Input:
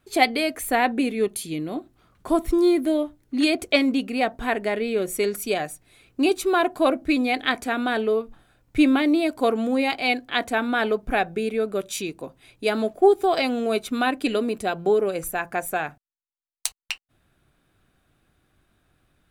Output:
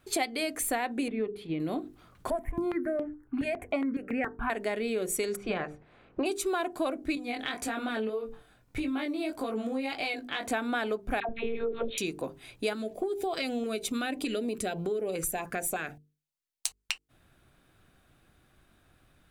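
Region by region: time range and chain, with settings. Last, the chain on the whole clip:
1.08–1.6 gate -37 dBFS, range -7 dB + air absorption 450 m + notches 60/120/180/240/300/360/420 Hz
2.3–4.5 resonant high shelf 2600 Hz -14 dB, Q 3 + step phaser 7.2 Hz 320–3900 Hz
5.35–6.25 spectral limiter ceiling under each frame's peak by 15 dB + LPF 1500 Hz
7.15–10.51 compressor 5:1, threshold -26 dBFS + chorus 1.7 Hz, delay 18 ms, depth 4.9 ms
11.2–11.98 monotone LPC vocoder at 8 kHz 230 Hz + dispersion lows, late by 87 ms, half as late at 740 Hz
12.73–16.66 compressor 2:1, threshold -29 dBFS + LFO notch saw up 3.3 Hz 640–1800 Hz
whole clip: notches 50/100/150/200/250/300/350/400/450 Hz; dynamic EQ 7700 Hz, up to +6 dB, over -48 dBFS, Q 1.3; compressor 5:1, threshold -31 dBFS; gain +2.5 dB

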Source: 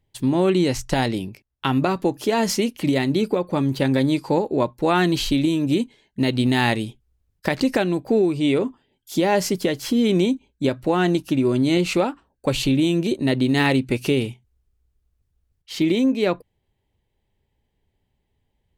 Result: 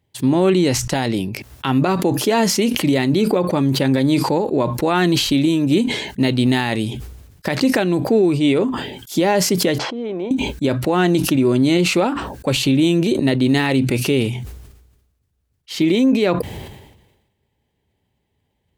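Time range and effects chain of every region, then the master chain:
9.78–10.31 band-pass 760 Hz, Q 1.7 + air absorption 90 m
whole clip: HPF 75 Hz 12 dB/oct; maximiser +10.5 dB; sustainer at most 53 dB/s; gain -6.5 dB

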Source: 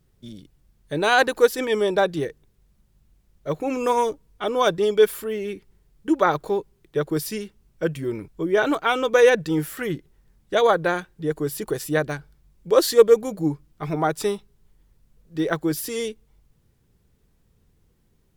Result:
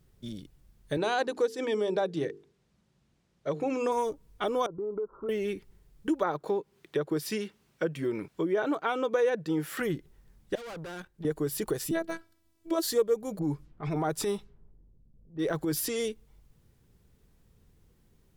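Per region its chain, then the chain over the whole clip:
0.97–3.92 notches 50/100/150/200/250/300/350/400/450 Hz + dynamic EQ 1400 Hz, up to -4 dB, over -32 dBFS, Q 0.91 + BPF 120–6500 Hz
4.66–5.29 rippled Chebyshev low-pass 1400 Hz, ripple 6 dB + compressor 5:1, threshold -31 dBFS
6.23–9.8 HPF 150 Hz + high shelf 5700 Hz -11 dB + mismatched tape noise reduction encoder only
10.55–11.25 tube stage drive 31 dB, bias 0.45 + level quantiser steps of 10 dB
11.91–12.83 HPF 97 Hz + robotiser 329 Hz
13.39–16.07 low-pass opened by the level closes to 340 Hz, open at -23.5 dBFS + transient shaper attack -9 dB, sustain +3 dB
whole clip: dynamic EQ 2500 Hz, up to -5 dB, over -34 dBFS, Q 0.71; compressor 2.5:1, threshold -28 dBFS

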